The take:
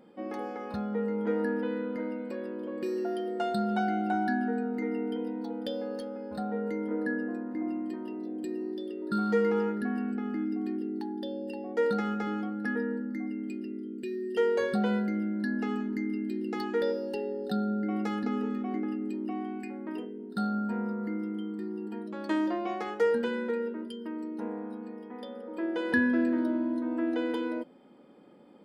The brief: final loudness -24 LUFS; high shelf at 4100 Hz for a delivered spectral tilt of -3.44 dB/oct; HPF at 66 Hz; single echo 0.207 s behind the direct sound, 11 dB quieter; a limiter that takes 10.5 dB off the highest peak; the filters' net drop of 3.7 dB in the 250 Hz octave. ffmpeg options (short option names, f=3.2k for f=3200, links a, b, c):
-af "highpass=66,equalizer=f=250:t=o:g=-4.5,highshelf=f=4.1k:g=-8.5,alimiter=level_in=3.5dB:limit=-24dB:level=0:latency=1,volume=-3.5dB,aecho=1:1:207:0.282,volume=13dB"